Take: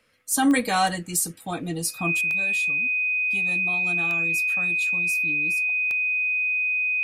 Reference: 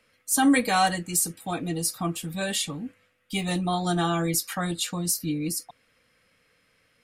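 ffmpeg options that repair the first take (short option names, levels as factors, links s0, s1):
-af "adeclick=t=4,bandreject=f=2500:w=30,asetnsamples=n=441:p=0,asendcmd='2.21 volume volume 10dB',volume=1"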